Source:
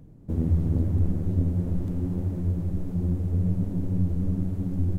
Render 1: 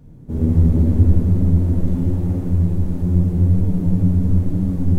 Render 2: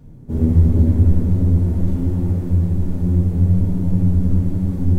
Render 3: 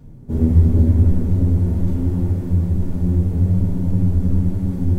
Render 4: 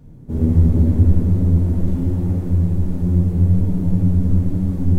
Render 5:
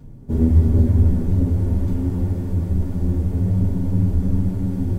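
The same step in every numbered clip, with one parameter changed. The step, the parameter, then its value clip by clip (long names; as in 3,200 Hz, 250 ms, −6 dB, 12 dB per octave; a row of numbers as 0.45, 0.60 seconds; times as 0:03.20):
reverb whose tail is shaped and stops, gate: 520, 220, 140, 340, 80 milliseconds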